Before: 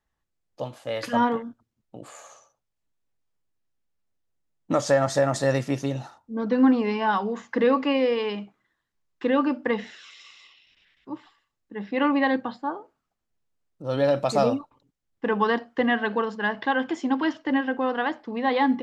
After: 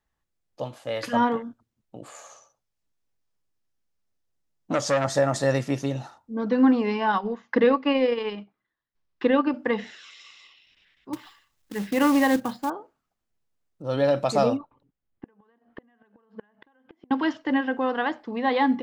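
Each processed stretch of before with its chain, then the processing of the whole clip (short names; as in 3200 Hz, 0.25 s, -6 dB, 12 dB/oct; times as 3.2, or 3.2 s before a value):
2.14–5.05 bell 5400 Hz +3.5 dB 0.55 oct + core saturation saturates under 1100 Hz
7.12–9.54 LPF 5500 Hz 24 dB/oct + transient shaper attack +4 dB, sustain -10 dB
11.13–12.7 low shelf 190 Hz +9.5 dB + short-mantissa float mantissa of 2-bit + mismatched tape noise reduction encoder only
14.57–17.11 compressor 12:1, threshold -27 dBFS + flipped gate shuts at -24 dBFS, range -30 dB + air absorption 350 m
whole clip: dry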